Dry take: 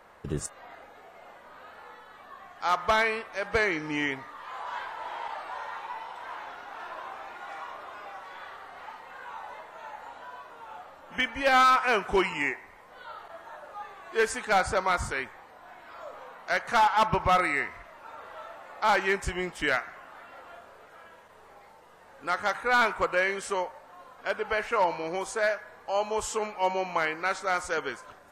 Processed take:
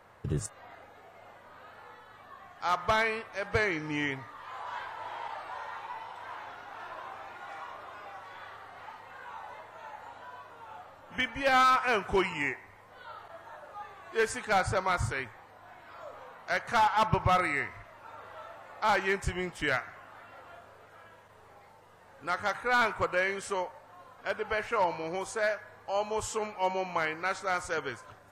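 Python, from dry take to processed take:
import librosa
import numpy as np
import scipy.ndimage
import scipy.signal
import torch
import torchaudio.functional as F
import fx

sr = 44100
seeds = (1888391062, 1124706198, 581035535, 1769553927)

y = fx.peak_eq(x, sr, hz=110.0, db=13.5, octaves=0.66)
y = F.gain(torch.from_numpy(y), -3.0).numpy()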